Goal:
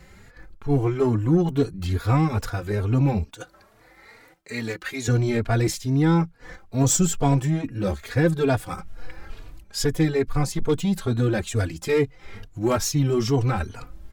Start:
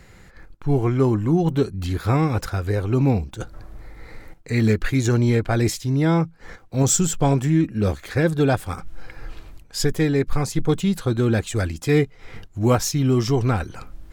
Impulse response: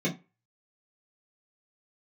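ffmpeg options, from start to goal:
-filter_complex "[0:a]aeval=exprs='0.501*(cos(1*acos(clip(val(0)/0.501,-1,1)))-cos(1*PI/2))+0.0224*(cos(5*acos(clip(val(0)/0.501,-1,1)))-cos(5*PI/2))+0.0355*(cos(6*acos(clip(val(0)/0.501,-1,1)))-cos(6*PI/2))+0.0251*(cos(8*acos(clip(val(0)/0.501,-1,1)))-cos(8*PI/2))':channel_layout=same,asettb=1/sr,asplit=3[link_01][link_02][link_03];[link_01]atrim=end=3.234[link_04];[link_02]atrim=start=3.23:end=5.08,asetpts=PTS-STARTPTS,afade=type=in:duration=0.004:curve=qsin,afade=type=out:start_time=1.846:duration=0.004:curve=qsin,highpass=frequency=680:poles=1[link_05];[link_03]atrim=start=5.076[link_06];[link_04][link_05]acrossfade=duration=0.004:curve1=hsin:curve2=qsin[link_07];[link_07][link_06]acrossfade=duration=0.004:curve1=qsin:curve2=hsin,asplit=2[link_08][link_09];[link_09]adelay=3.5,afreqshift=2.3[link_10];[link_08][link_10]amix=inputs=2:normalize=1"

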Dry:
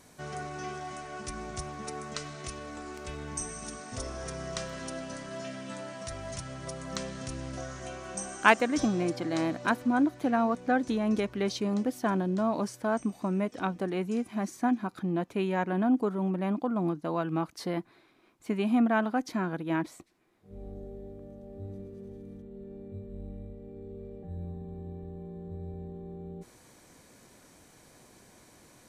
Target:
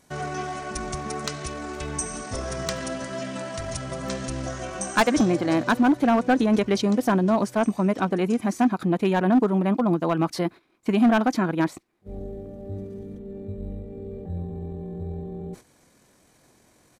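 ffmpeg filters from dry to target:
ffmpeg -i in.wav -af "agate=range=-10dB:threshold=-53dB:ratio=16:detection=peak,atempo=1.7,asoftclip=type=hard:threshold=-21.5dB,volume=8dB" out.wav

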